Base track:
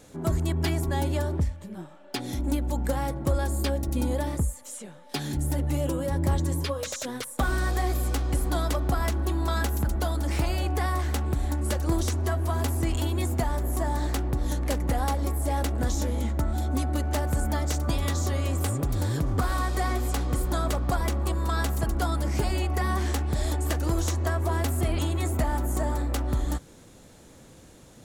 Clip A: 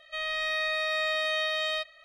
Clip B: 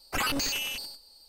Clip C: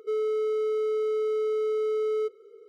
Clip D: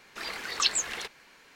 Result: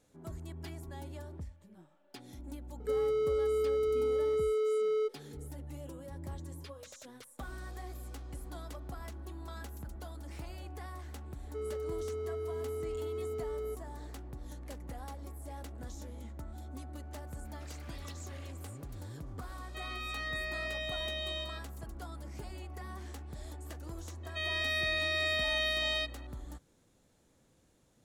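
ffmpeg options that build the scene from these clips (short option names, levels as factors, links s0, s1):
-filter_complex "[3:a]asplit=2[s0][s1];[1:a]asplit=2[s2][s3];[0:a]volume=0.126[s4];[s0]equalizer=f=3900:w=1.5:g=3.5[s5];[4:a]acompressor=threshold=0.0141:ratio=3:attack=0.12:release=184:knee=1:detection=peak[s6];[s2]aecho=1:1:47|138:0.355|0.631[s7];[s3]equalizer=f=1000:w=2:g=-14.5[s8];[s5]atrim=end=2.68,asetpts=PTS-STARTPTS,volume=0.668,afade=t=in:d=0.004:c=hsin,afade=t=out:st=2.676:d=0.004:c=hsin,adelay=2800[s9];[s1]atrim=end=2.68,asetpts=PTS-STARTPTS,volume=0.266,afade=t=in:d=0.004:c=hsin,afade=t=out:st=2.676:d=0.004:c=hsin,adelay=11470[s10];[s6]atrim=end=1.55,asetpts=PTS-STARTPTS,volume=0.2,afade=t=in:d=0.004:c=hsin,afade=t=out:st=1.546:d=0.004:c=hsin,adelay=17450[s11];[s7]atrim=end=2.04,asetpts=PTS-STARTPTS,volume=0.282,afade=t=in:d=0.004:c=hsin,afade=t=out:st=2.036:d=0.004:c=hsin,adelay=19620[s12];[s8]atrim=end=2.04,asetpts=PTS-STARTPTS,volume=0.891,afade=t=in:d=0.004:c=hsin,afade=t=out:st=2.036:d=0.004:c=hsin,adelay=24230[s13];[s4][s9][s10][s11][s12][s13]amix=inputs=6:normalize=0"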